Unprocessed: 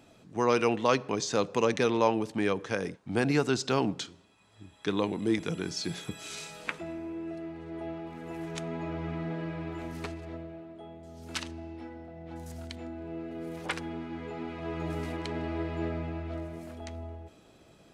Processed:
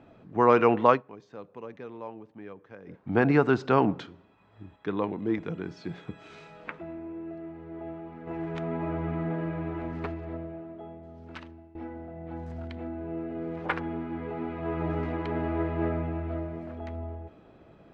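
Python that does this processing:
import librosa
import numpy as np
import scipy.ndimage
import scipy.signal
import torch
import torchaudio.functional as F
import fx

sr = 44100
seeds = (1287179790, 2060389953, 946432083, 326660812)

y = fx.edit(x, sr, fx.fade_down_up(start_s=0.89, length_s=2.1, db=-19.0, fade_s=0.13),
    fx.clip_gain(start_s=4.76, length_s=3.51, db=-5.0),
    fx.fade_out_to(start_s=10.76, length_s=0.99, floor_db=-18.5), tone=tone)
y = scipy.signal.sosfilt(scipy.signal.butter(2, 1800.0, 'lowpass', fs=sr, output='sos'), y)
y = fx.dynamic_eq(y, sr, hz=1200.0, q=0.77, threshold_db=-40.0, ratio=4.0, max_db=4)
y = F.gain(torch.from_numpy(y), 4.0).numpy()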